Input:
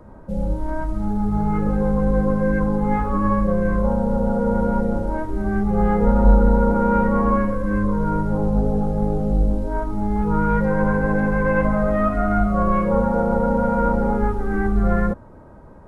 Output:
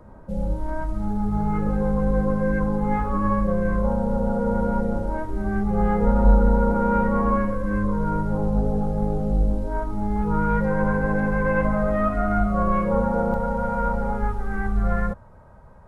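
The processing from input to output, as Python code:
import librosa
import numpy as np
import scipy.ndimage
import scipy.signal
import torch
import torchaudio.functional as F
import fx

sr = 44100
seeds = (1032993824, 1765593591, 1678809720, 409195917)

y = fx.peak_eq(x, sr, hz=310.0, db=fx.steps((0.0, -3.0), (13.34, -14.5)), octaves=0.89)
y = F.gain(torch.from_numpy(y), -2.0).numpy()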